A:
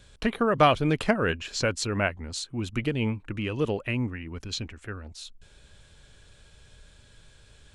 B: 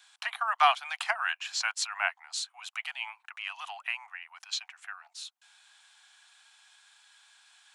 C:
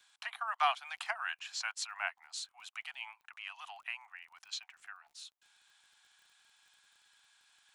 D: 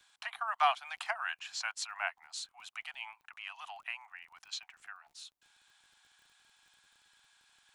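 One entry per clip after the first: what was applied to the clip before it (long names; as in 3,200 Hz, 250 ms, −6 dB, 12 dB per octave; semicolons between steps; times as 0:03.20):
Butterworth high-pass 720 Hz 96 dB per octave
surface crackle 36 per second −48 dBFS; level −7.5 dB
low-shelf EQ 500 Hz +10 dB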